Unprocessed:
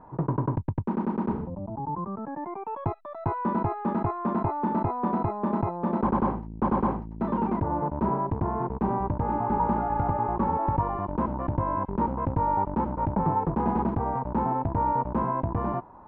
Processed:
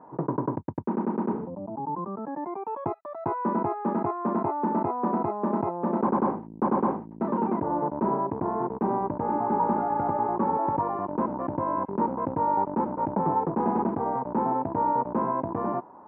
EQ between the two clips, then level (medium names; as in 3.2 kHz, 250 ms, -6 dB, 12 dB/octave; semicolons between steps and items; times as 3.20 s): band-pass 300–2200 Hz; bass shelf 480 Hz +8.5 dB; -1.0 dB